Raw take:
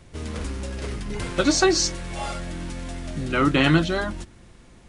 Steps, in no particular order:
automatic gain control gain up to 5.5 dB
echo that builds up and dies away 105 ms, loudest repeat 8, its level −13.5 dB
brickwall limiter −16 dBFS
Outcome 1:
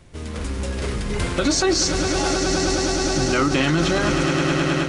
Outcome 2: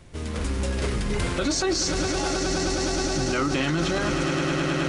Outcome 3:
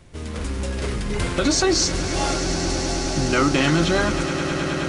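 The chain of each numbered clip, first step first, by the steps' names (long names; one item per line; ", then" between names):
echo that builds up and dies away, then brickwall limiter, then automatic gain control
automatic gain control, then echo that builds up and dies away, then brickwall limiter
brickwall limiter, then automatic gain control, then echo that builds up and dies away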